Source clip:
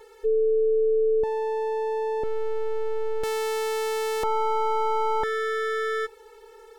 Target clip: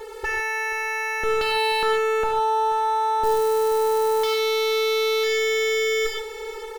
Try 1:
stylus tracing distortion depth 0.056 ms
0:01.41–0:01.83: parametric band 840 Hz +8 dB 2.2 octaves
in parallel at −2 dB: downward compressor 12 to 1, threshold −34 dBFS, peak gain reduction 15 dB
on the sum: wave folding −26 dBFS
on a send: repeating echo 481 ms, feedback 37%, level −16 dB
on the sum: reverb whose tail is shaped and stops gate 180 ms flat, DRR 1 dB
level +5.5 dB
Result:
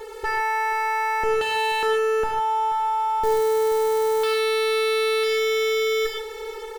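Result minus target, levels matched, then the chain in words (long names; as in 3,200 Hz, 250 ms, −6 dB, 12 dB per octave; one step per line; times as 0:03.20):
downward compressor: peak gain reduction +6.5 dB
stylus tracing distortion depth 0.056 ms
0:01.41–0:01.83: parametric band 840 Hz +8 dB 2.2 octaves
in parallel at −2 dB: downward compressor 12 to 1, threshold −27 dBFS, peak gain reduction 8.5 dB
on the sum: wave folding −26 dBFS
on a send: repeating echo 481 ms, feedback 37%, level −16 dB
on the sum: reverb whose tail is shaped and stops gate 180 ms flat, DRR 1 dB
level +5.5 dB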